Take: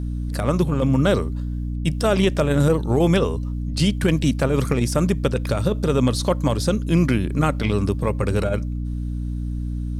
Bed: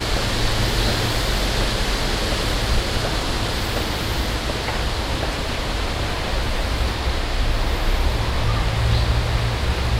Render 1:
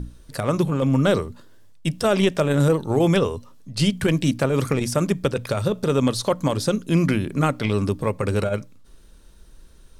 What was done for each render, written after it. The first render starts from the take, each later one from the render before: notches 60/120/180/240/300 Hz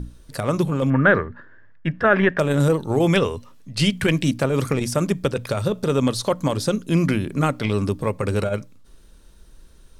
0.9–2.39 synth low-pass 1700 Hz, resonance Q 7.5; 3.08–4.23 bell 2200 Hz +6 dB 1.2 oct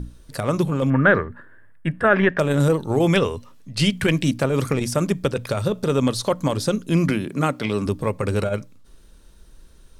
1.29–2.08 resonant high shelf 7300 Hz +9 dB, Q 3; 7.1–7.86 HPF 140 Hz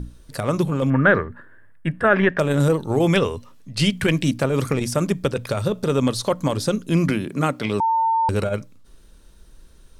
7.8–8.29 bleep 902 Hz -16 dBFS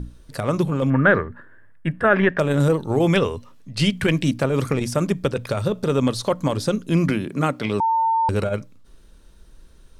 high shelf 5700 Hz -4.5 dB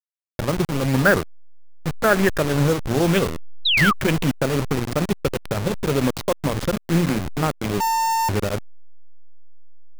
level-crossing sampler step -19.5 dBFS; 3.65–3.93 painted sound fall 1100–4100 Hz -18 dBFS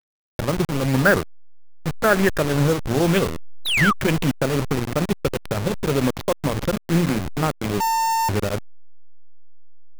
median filter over 9 samples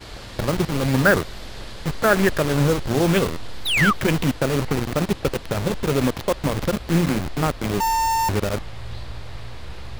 add bed -16 dB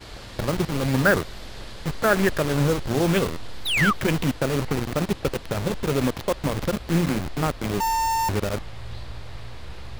gain -2.5 dB

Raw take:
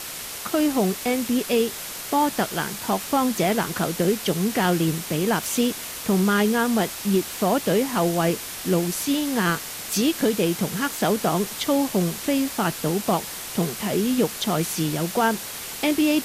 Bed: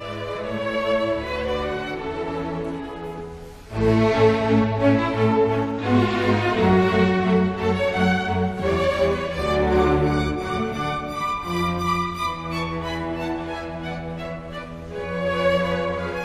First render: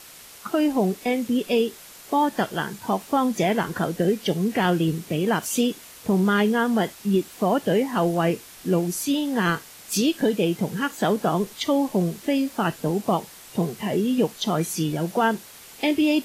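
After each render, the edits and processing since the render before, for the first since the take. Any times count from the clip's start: noise print and reduce 11 dB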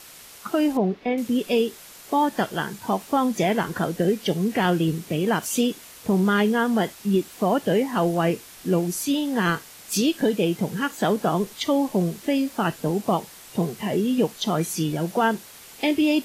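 0.77–1.18 air absorption 280 m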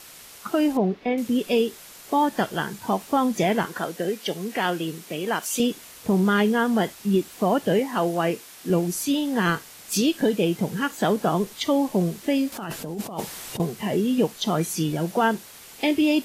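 3.65–5.6 HPF 520 Hz 6 dB/oct; 7.79–8.7 HPF 250 Hz 6 dB/oct; 12.52–13.6 negative-ratio compressor -31 dBFS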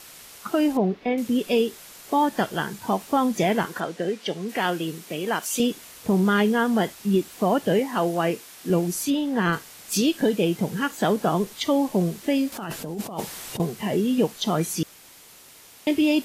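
3.8–4.49 air absorption 57 m; 9.1–9.53 high shelf 4100 Hz -9 dB; 14.83–15.87 room tone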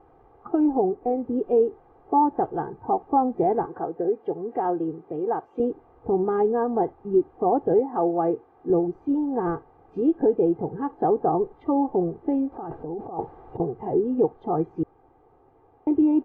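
Chebyshev low-pass 880 Hz, order 3; comb 2.5 ms, depth 76%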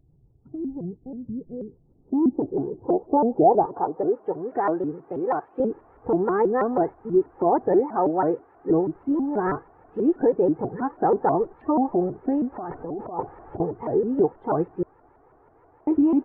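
low-pass sweep 150 Hz -> 1700 Hz, 1.58–4.51; shaped vibrato saw up 6.2 Hz, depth 250 cents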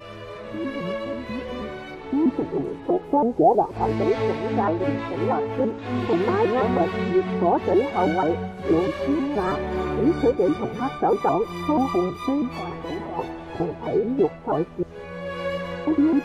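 add bed -8 dB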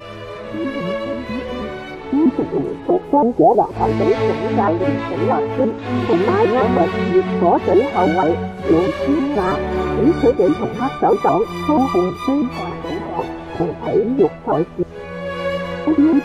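gain +6 dB; limiter -3 dBFS, peak gain reduction 2.5 dB

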